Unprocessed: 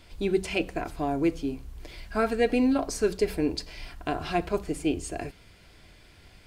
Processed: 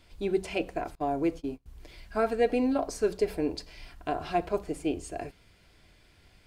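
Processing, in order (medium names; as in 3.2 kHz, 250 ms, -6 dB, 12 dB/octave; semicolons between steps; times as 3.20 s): 0.95–1.66 s: gate -32 dBFS, range -24 dB; dynamic bell 640 Hz, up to +7 dB, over -39 dBFS, Q 0.85; trim -6 dB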